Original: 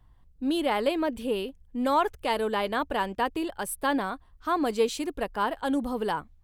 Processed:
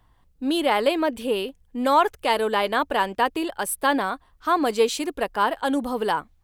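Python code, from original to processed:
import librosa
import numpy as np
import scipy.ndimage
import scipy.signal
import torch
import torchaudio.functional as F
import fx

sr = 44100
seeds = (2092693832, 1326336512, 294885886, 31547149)

y = fx.low_shelf(x, sr, hz=210.0, db=-10.5)
y = y * librosa.db_to_amplitude(6.5)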